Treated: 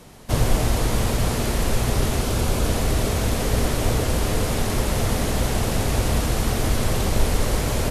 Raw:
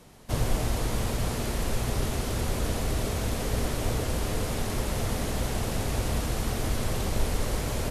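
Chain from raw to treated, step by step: 2.22–2.70 s: band-stop 1.9 kHz, Q 10; trim +7 dB

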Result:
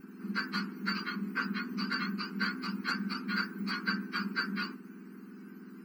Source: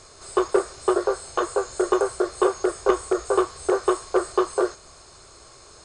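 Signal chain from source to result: spectrum inverted on a logarithmic axis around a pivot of 1.3 kHz; static phaser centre 1.5 kHz, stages 4; trim -3 dB

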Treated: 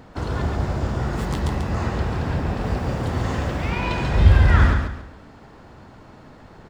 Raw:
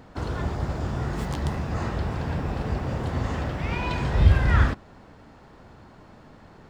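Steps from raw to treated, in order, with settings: 2.63–3.70 s: treble shelf 6.3 kHz +5 dB; feedback delay 139 ms, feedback 31%, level -5.5 dB; trim +3 dB

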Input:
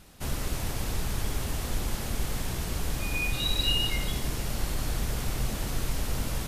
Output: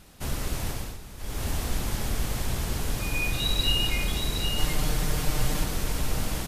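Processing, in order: 4.57–5.64 s: comb 6.6 ms, depth 98%; delay 767 ms -6 dB; 0.69–1.47 s: dip -13.5 dB, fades 0.30 s; trim +1 dB

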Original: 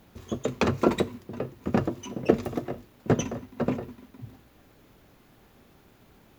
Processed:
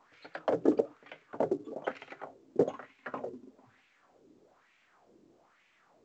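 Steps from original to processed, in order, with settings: gliding tape speed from 130% -> 81%; wah-wah 1.1 Hz 320–2400 Hz, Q 2.9; trim +2 dB; µ-law 128 kbps 16 kHz

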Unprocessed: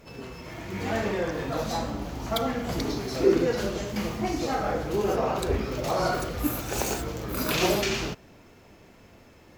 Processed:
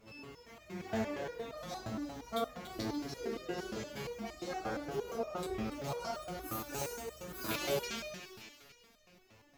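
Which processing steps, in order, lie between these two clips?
two-band feedback delay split 1.3 kHz, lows 131 ms, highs 288 ms, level -11 dB; resonator arpeggio 8.6 Hz 110–610 Hz; trim +1.5 dB

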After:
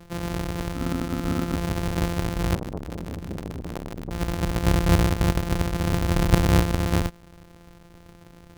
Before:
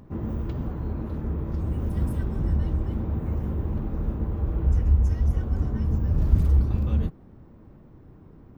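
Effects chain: sorted samples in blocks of 256 samples; 0.74–1.54 s: small resonant body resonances 260/1300 Hz, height 15 dB -> 18 dB, ringing for 100 ms; 2.55–4.11 s: transformer saturation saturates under 520 Hz

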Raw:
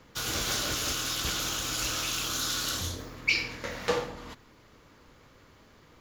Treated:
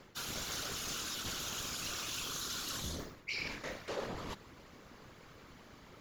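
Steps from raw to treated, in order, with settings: reverse; compression 6:1, threshold -39 dBFS, peak gain reduction 18 dB; reverse; whisper effect; trim +1 dB

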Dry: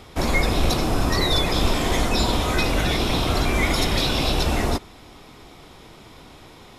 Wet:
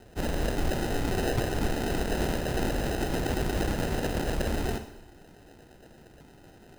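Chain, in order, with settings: LFO low-pass saw up 8.6 Hz 320–4600 Hz; sample-and-hold 39×; Schroeder reverb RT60 0.85 s, combs from 31 ms, DRR 8.5 dB; trim -9 dB

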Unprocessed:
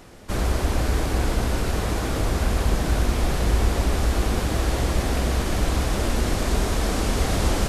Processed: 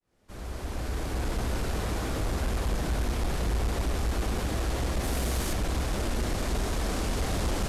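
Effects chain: fade-in on the opening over 1.49 s; 5.02–5.52 s: treble shelf 8.8 kHz -> 4.6 kHz +9.5 dB; saturation -17 dBFS, distortion -15 dB; trim -4.5 dB

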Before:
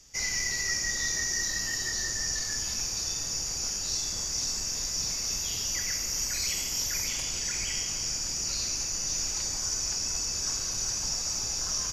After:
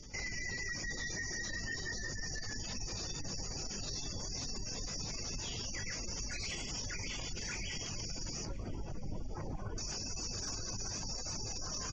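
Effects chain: peaking EQ 60 Hz -10.5 dB 0.21 oct; echo from a far wall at 130 m, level -20 dB; reverb removal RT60 0.65 s; low-pass 4.3 kHz 12 dB/octave, from 8.45 s 1.3 kHz, from 9.78 s 4.8 kHz; doubling 20 ms -9.5 dB; overload inside the chain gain 32 dB; tilt shelf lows +3.5 dB, about 720 Hz; compression, threshold -43 dBFS, peak gain reduction 10 dB; spectral gate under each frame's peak -25 dB strong; feedback delay 1021 ms, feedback 54%, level -23 dB; peak limiter -42.5 dBFS, peak gain reduction 7.5 dB; trim +10.5 dB; Opus 64 kbps 48 kHz

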